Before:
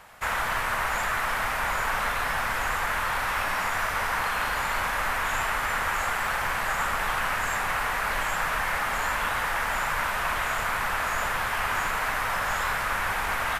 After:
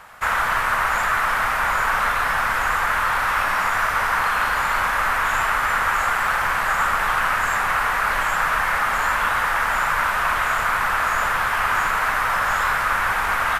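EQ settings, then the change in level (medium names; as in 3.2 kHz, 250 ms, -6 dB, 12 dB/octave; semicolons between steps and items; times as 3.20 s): peaking EQ 1.3 kHz +6.5 dB 1 oct; +2.5 dB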